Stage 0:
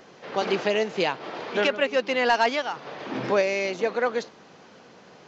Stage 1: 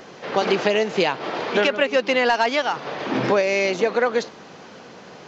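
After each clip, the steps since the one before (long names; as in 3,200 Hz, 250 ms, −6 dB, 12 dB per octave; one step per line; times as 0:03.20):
downward compressor, threshold −23 dBFS, peak gain reduction 7 dB
level +8 dB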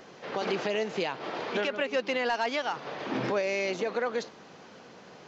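brickwall limiter −11.5 dBFS, peak gain reduction 6 dB
level −8 dB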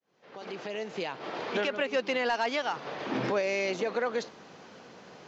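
fade in at the beginning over 1.59 s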